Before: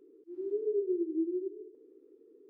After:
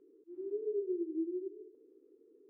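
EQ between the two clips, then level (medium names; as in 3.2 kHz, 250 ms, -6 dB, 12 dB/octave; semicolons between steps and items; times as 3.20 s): distance through air 390 m; -3.5 dB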